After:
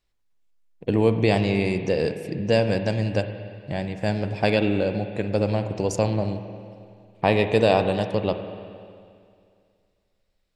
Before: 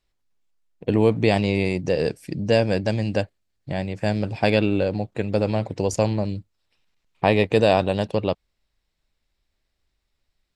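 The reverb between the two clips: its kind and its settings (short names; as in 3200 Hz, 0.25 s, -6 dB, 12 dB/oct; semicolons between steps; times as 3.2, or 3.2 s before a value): spring tank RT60 2.3 s, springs 45/58 ms, chirp 50 ms, DRR 8 dB; gain -1.5 dB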